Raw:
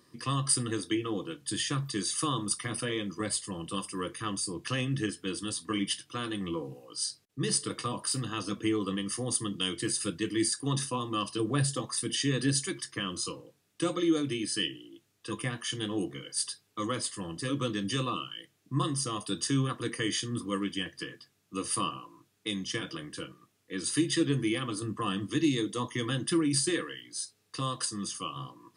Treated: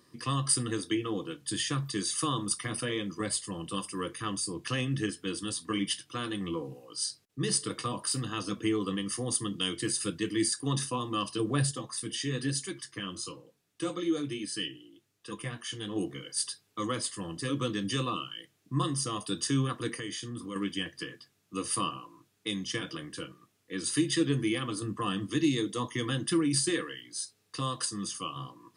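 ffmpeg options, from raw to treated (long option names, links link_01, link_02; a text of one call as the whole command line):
ffmpeg -i in.wav -filter_complex "[0:a]asettb=1/sr,asplit=3[link_01][link_02][link_03];[link_01]atrim=end=11.714[link_04];[link_02]atrim=start=11.71:end=15.96,asetpts=PTS-STARTPTS,afade=type=in:duration=0.004:curve=qsin,afade=type=out:start_time=4.246:duration=0.004:curve=qsin,flanger=delay=3.8:depth=7.4:regen=-46:speed=1.1:shape=triangular[link_05];[link_03]atrim=start=15.956[link_06];[link_04][link_05]acrossfade=duration=0.004:curve1=hsin:curve2=qsin[link_07];[link_07][link_06]acrossfade=duration=0.004:curve1=qsin:curve2=hsin,asettb=1/sr,asplit=3[link_08][link_09][link_10];[link_08]atrim=end=19.954[link_11];[link_09]atrim=start=19.95:end=20.56,asetpts=PTS-STARTPTS,afade=type=in:duration=0.004:curve=qsin,afade=type=out:start_time=0.606:duration=0.004:curve=qsin,acompressor=threshold=-37dB:ratio=2.5:attack=3.2:release=140:knee=1:detection=peak[link_12];[link_10]atrim=start=20.556[link_13];[link_11][link_12]acrossfade=duration=0.004:curve1=hsin:curve2=qsin[link_14];[link_14][link_13]acrossfade=duration=0.004:curve1=qsin:curve2=hsin" out.wav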